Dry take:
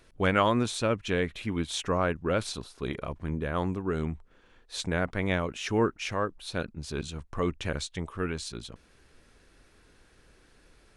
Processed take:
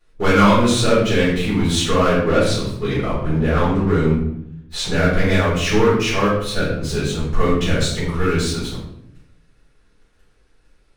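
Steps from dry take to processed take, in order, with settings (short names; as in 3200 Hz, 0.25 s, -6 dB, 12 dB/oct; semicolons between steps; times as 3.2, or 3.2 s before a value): sample leveller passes 3; 2.18–4.94 high shelf 6500 Hz -5.5 dB; shoebox room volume 160 m³, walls mixed, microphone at 4 m; gain -9.5 dB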